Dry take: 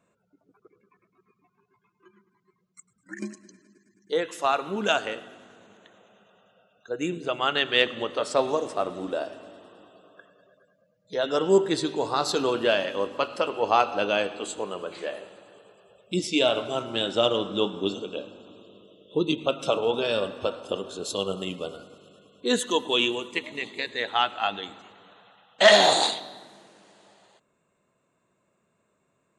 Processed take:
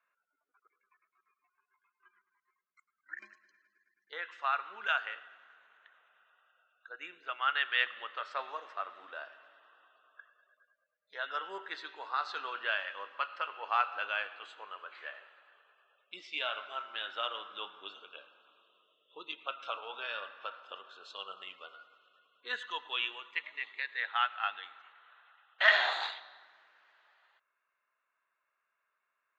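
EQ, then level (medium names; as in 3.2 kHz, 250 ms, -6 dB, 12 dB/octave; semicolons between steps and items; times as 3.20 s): ladder band-pass 1.8 kHz, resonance 40%; distance through air 130 m; +6.5 dB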